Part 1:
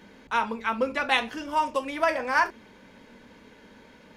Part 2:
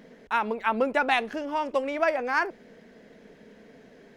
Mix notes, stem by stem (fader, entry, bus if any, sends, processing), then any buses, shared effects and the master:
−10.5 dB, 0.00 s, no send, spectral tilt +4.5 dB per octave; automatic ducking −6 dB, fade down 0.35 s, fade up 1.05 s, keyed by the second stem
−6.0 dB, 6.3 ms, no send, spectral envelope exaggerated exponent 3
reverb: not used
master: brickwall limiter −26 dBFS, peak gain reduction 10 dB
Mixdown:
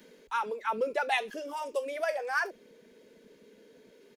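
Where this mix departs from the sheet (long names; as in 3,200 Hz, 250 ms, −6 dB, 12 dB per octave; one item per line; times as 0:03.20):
stem 2: polarity flipped
master: missing brickwall limiter −26 dBFS, peak gain reduction 10 dB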